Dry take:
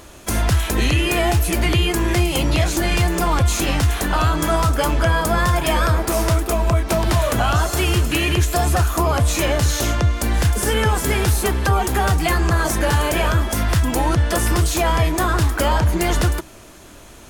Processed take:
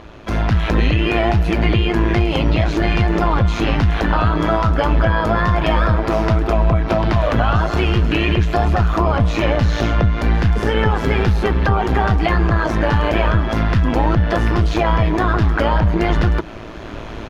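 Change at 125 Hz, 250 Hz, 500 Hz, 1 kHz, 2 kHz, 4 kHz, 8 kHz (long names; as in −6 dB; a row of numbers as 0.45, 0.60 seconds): +2.0, +3.5, +2.5, +1.5, +0.5, −3.0, −18.5 decibels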